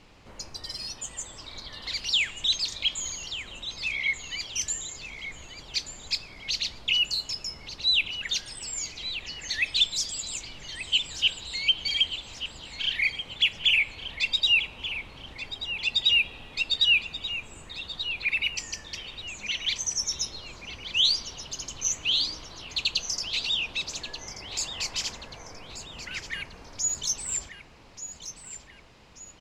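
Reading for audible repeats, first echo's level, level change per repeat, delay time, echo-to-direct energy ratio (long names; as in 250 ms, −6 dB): 3, −11.5 dB, −7.5 dB, 1,183 ms, −10.5 dB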